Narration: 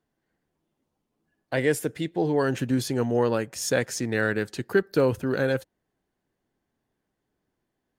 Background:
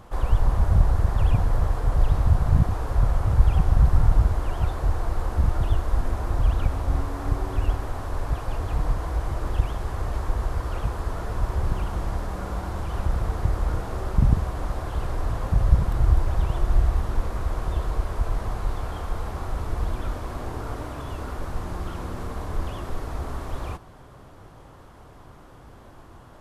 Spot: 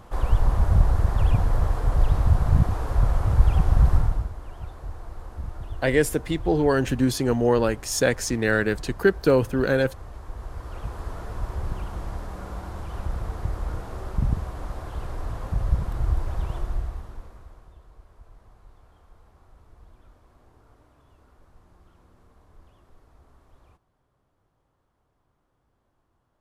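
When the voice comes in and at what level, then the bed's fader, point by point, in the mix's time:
4.30 s, +3.0 dB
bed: 0:03.94 0 dB
0:04.32 −12.5 dB
0:10.20 −12.5 dB
0:11.01 −5 dB
0:16.56 −5 dB
0:17.78 −25 dB

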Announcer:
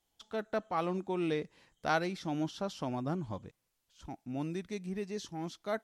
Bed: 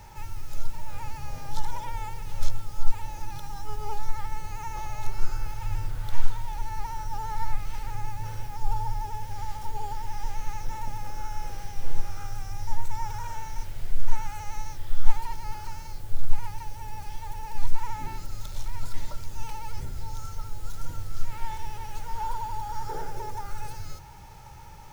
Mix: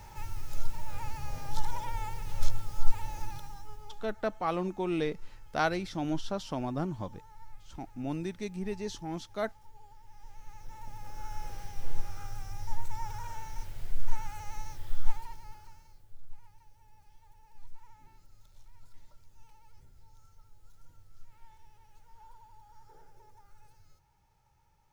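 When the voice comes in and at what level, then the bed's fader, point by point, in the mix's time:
3.70 s, +2.0 dB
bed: 0:03.24 −2 dB
0:04.16 −22 dB
0:10.02 −22 dB
0:11.33 −5.5 dB
0:14.94 −5.5 dB
0:16.18 −23.5 dB

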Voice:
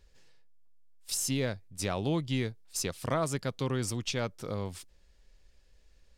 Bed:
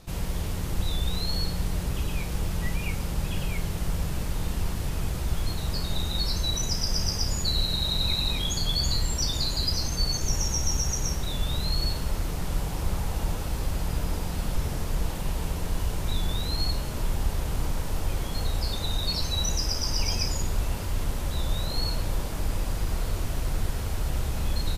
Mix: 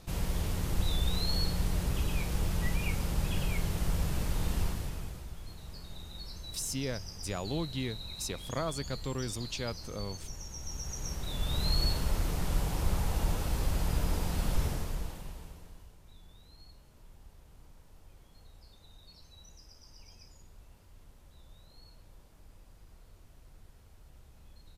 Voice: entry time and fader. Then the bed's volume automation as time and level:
5.45 s, −4.5 dB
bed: 0:04.62 −2.5 dB
0:05.33 −17 dB
0:10.49 −17 dB
0:11.68 −2 dB
0:14.64 −2 dB
0:15.98 −28 dB

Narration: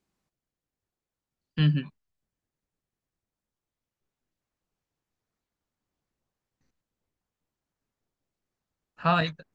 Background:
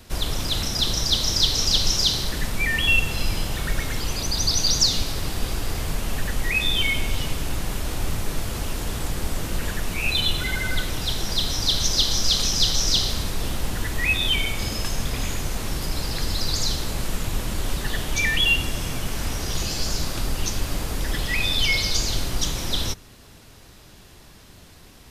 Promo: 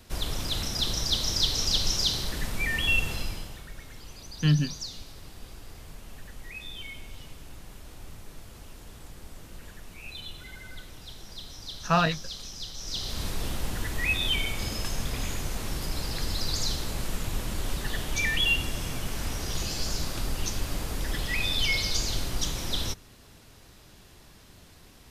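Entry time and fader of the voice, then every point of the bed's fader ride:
2.85 s, +0.5 dB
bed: 0:03.12 −5.5 dB
0:03.68 −18.5 dB
0:12.75 −18.5 dB
0:13.25 −5 dB

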